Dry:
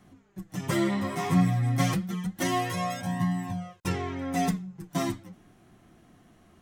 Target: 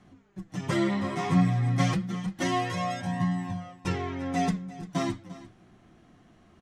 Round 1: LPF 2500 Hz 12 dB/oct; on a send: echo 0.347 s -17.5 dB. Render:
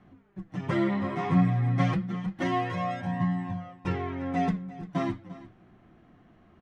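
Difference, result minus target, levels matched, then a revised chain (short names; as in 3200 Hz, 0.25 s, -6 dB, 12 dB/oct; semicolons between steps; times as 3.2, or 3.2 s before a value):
8000 Hz band -14.0 dB
LPF 6400 Hz 12 dB/oct; on a send: echo 0.347 s -17.5 dB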